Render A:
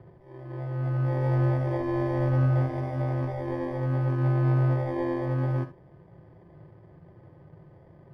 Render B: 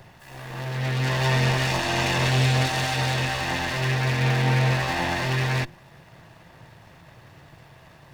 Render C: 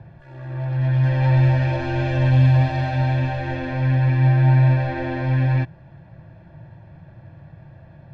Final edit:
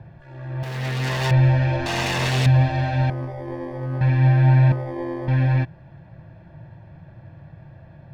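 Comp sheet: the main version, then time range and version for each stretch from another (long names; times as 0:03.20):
C
0:00.63–0:01.31: punch in from B
0:01.86–0:02.46: punch in from B
0:03.10–0:04.01: punch in from A
0:04.72–0:05.28: punch in from A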